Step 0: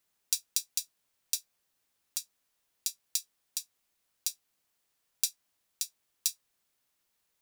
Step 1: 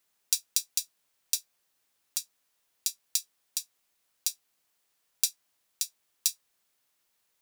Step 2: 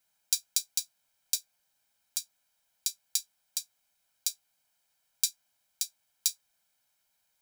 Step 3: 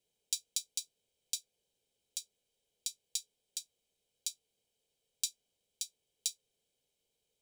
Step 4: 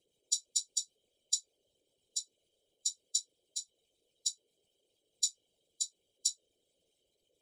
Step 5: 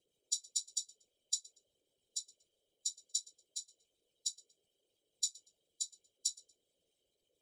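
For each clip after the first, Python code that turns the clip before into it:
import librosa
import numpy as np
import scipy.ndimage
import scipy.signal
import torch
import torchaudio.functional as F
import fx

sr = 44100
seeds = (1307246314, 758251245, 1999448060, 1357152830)

y1 = fx.low_shelf(x, sr, hz=230.0, db=-6.0)
y1 = F.gain(torch.from_numpy(y1), 3.0).numpy()
y2 = y1 + 0.65 * np.pad(y1, (int(1.3 * sr / 1000.0), 0))[:len(y1)]
y2 = F.gain(torch.from_numpy(y2), -2.5).numpy()
y3 = fx.curve_eq(y2, sr, hz=(300.0, 430.0, 640.0, 1400.0, 3100.0, 4800.0, 8400.0, 14000.0), db=(0, 15, -6, -23, -2, -9, -7, -16))
y3 = F.gain(torch.from_numpy(y3), 1.5).numpy()
y4 = fx.spec_expand(y3, sr, power=2.1)
y4 = fx.whisperise(y4, sr, seeds[0])
y4 = F.gain(torch.from_numpy(y4), 5.0).numpy()
y5 = fx.echo_feedback(y4, sr, ms=118, feedback_pct=26, wet_db=-22.5)
y5 = F.gain(torch.from_numpy(y5), -4.0).numpy()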